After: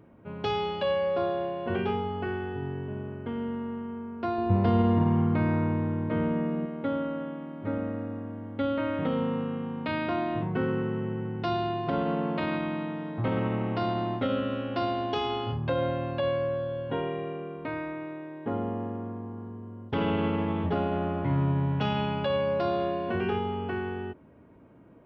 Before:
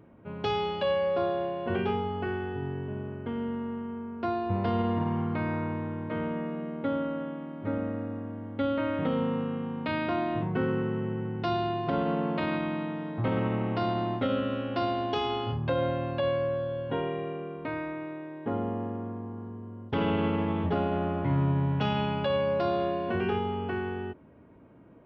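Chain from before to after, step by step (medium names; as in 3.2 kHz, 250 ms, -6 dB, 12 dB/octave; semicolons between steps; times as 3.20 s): 4.38–6.66 s: bass shelf 430 Hz +7 dB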